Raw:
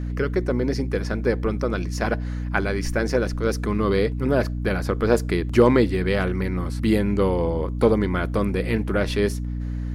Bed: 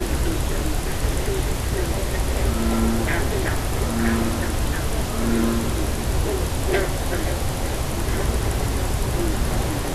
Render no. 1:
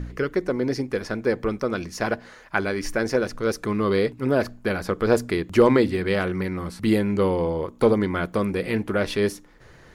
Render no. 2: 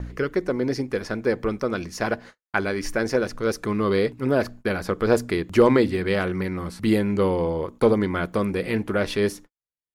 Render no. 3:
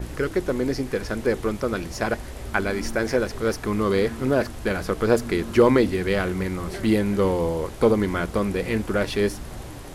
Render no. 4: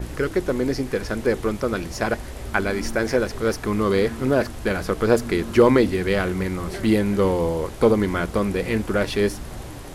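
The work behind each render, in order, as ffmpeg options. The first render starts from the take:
-af "bandreject=f=60:t=h:w=4,bandreject=f=120:t=h:w=4,bandreject=f=180:t=h:w=4,bandreject=f=240:t=h:w=4,bandreject=f=300:t=h:w=4"
-af "agate=range=-58dB:threshold=-40dB:ratio=16:detection=peak"
-filter_complex "[1:a]volume=-14dB[a];[0:a][a]amix=inputs=2:normalize=0"
-af "volume=1.5dB"

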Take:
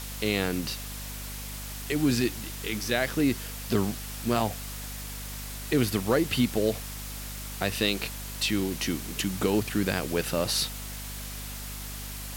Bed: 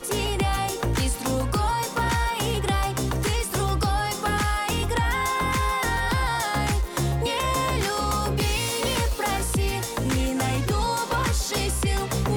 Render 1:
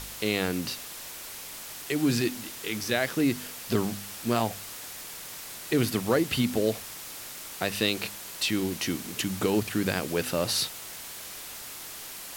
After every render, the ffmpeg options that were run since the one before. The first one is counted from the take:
-af "bandreject=f=50:t=h:w=4,bandreject=f=100:t=h:w=4,bandreject=f=150:t=h:w=4,bandreject=f=200:t=h:w=4,bandreject=f=250:t=h:w=4"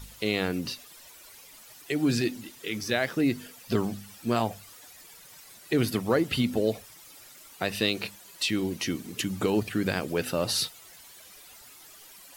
-af "afftdn=nr=13:nf=-41"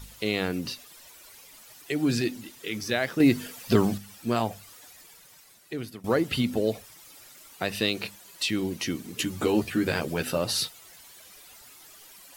-filter_complex "[0:a]asettb=1/sr,asplit=3[a][b][c];[a]atrim=end=3.204[d];[b]atrim=start=3.2:end=3.98,asetpts=PTS-STARTPTS,afade=t=in:d=0.004:c=qsin,afade=t=out:st=0.776:d=0.004:c=qsin,acontrast=44[e];[c]atrim=start=3.976[f];[d][e]acrossfade=d=0.004:c1=hsin:c2=qsin[g];[g][f]acrossfade=d=0.004:c1=qsin:c2=hsin,asettb=1/sr,asplit=3[h][i][j];[h]atrim=end=9.174[k];[i]atrim=start=9.17:end=10.38,asetpts=PTS-STARTPTS,afade=t=in:d=0.004:c=qsin,afade=t=out:st=1.206:d=0.004:c=qsin,asplit=2[l][m];[m]adelay=13,volume=-3.5dB[n];[l][n]amix=inputs=2:normalize=0,atrim=end_sample=53361[o];[j]atrim=start=10.376[p];[k][o]acrossfade=d=0.004:c1=hsin:c2=qsin[q];[q][p]acrossfade=d=0.004:c1=qsin:c2=hsin,asplit=2[r][s];[r]atrim=end=6.04,asetpts=PTS-STARTPTS,afade=t=out:st=4.88:d=1.16:silence=0.133352[t];[s]atrim=start=6.04,asetpts=PTS-STARTPTS,afade=t=in:d=0.004:c=hsin:silence=0.133352[u];[t][u]concat=n=2:v=0:a=1"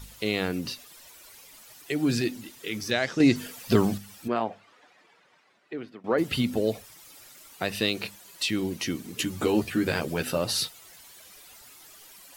-filter_complex "[0:a]asettb=1/sr,asplit=3[a][b][c];[a]atrim=end=2.914[d];[b]atrim=start=2.91:end=3.36,asetpts=PTS-STARTPTS,afade=t=in:d=0.004:c=qsin,afade=t=out:st=0.446:d=0.004:c=qsin,lowpass=f=6.3k:t=q:w=2.2[e];[c]atrim=start=3.356[f];[d][e]acrossfade=d=0.004:c1=hsin:c2=qsin[g];[g][f]acrossfade=d=0.004:c1=qsin:c2=hsin,asplit=3[h][i][j];[h]afade=t=out:st=4.27:d=0.02[k];[i]highpass=240,lowpass=2.3k,afade=t=in:st=4.27:d=0.02,afade=t=out:st=6.17:d=0.02[l];[j]afade=t=in:st=6.17:d=0.02[m];[k][l][m]amix=inputs=3:normalize=0"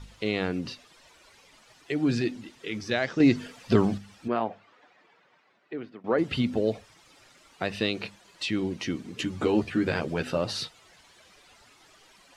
-af "lowpass=8.2k,aemphasis=mode=reproduction:type=50kf"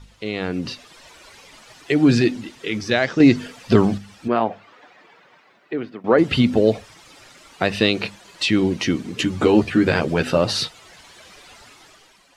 -af "dynaudnorm=f=110:g=11:m=11dB"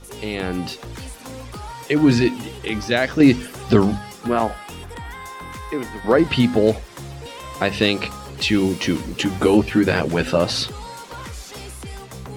-filter_complex "[1:a]volume=-10.5dB[a];[0:a][a]amix=inputs=2:normalize=0"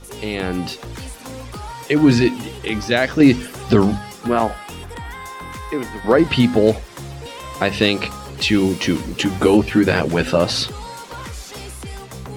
-af "volume=2dB,alimiter=limit=-2dB:level=0:latency=1"

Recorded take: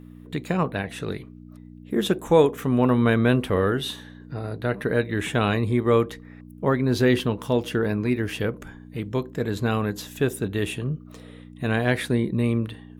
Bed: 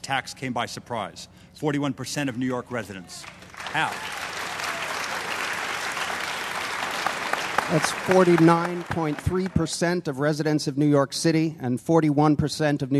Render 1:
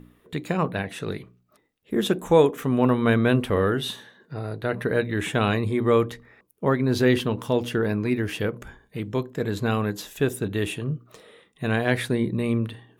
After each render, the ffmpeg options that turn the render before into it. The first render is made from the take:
-af "bandreject=f=60:t=h:w=4,bandreject=f=120:t=h:w=4,bandreject=f=180:t=h:w=4,bandreject=f=240:t=h:w=4,bandreject=f=300:t=h:w=4"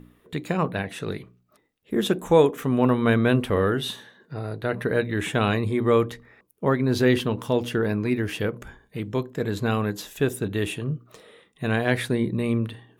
-af anull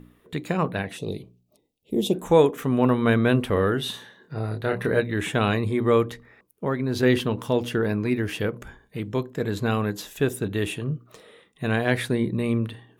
-filter_complex "[0:a]asplit=3[a][b][c];[a]afade=t=out:st=0.96:d=0.02[d];[b]asuperstop=centerf=1500:order=4:qfactor=0.7,afade=t=in:st=0.96:d=0.02,afade=t=out:st=2.13:d=0.02[e];[c]afade=t=in:st=2.13:d=0.02[f];[d][e][f]amix=inputs=3:normalize=0,asettb=1/sr,asplit=3[g][h][i];[g]atrim=end=3.914[j];[h]atrim=start=3.91:end=5,asetpts=PTS-STARTPTS,afade=t=in:d=0.004:c=qsin,afade=t=out:st=1.086:d=0.004:c=qsin,asplit=2[k][l];[l]adelay=27,volume=-4dB[m];[k][m]amix=inputs=2:normalize=0,atrim=end_sample=48069[n];[i]atrim=start=4.996[o];[j][n]acrossfade=d=0.004:c1=hsin:c2=qsin[p];[p][o]acrossfade=d=0.004:c1=qsin:c2=hsin,asettb=1/sr,asplit=3[q][r][s];[q]atrim=end=6.024[t];[r]atrim=start=6.02:end=7.03,asetpts=PTS-STARTPTS,afade=t=in:d=0.004:c=qsin,afade=t=out:st=1.006:d=0.004:c=qsin,acompressor=threshold=-27dB:ratio=1.5:attack=3.2:release=140:knee=1:detection=peak[u];[s]atrim=start=7.026[v];[t][u]acrossfade=d=0.004:c1=hsin:c2=qsin[w];[w][v]acrossfade=d=0.004:c1=qsin:c2=hsin"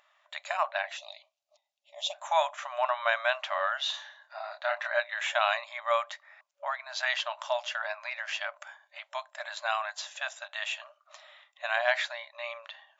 -af "afftfilt=real='re*between(b*sr/4096,560,7500)':imag='im*between(b*sr/4096,560,7500)':win_size=4096:overlap=0.75"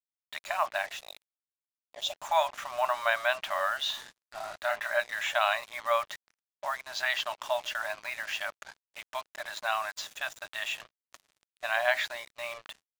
-af "acrusher=bits=6:mix=0:aa=0.5"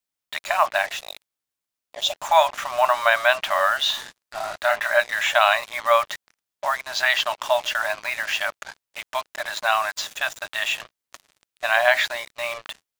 -af "volume=9.5dB,alimiter=limit=-3dB:level=0:latency=1"

